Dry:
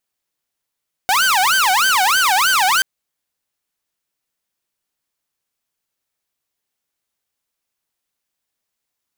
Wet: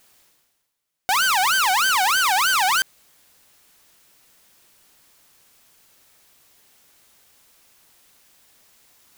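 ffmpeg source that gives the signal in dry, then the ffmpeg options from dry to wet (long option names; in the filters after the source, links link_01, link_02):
-f lavfi -i "aevalsrc='0.316*(2*mod((1148.5*t-411.5/(2*PI*3.2)*sin(2*PI*3.2*t)),1)-1)':duration=1.73:sample_rate=44100"
-af "alimiter=limit=-14dB:level=0:latency=1:release=38,areverse,acompressor=mode=upward:threshold=-37dB:ratio=2.5,areverse"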